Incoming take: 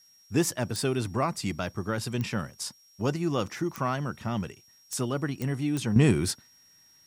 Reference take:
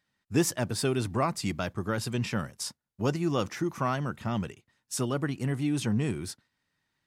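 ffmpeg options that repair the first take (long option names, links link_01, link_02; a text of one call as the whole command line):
ffmpeg -i in.wav -af "adeclick=threshold=4,bandreject=frequency=5600:width=30,agate=range=-21dB:threshold=-51dB,asetnsamples=nb_out_samples=441:pad=0,asendcmd='5.96 volume volume -9dB',volume=0dB" out.wav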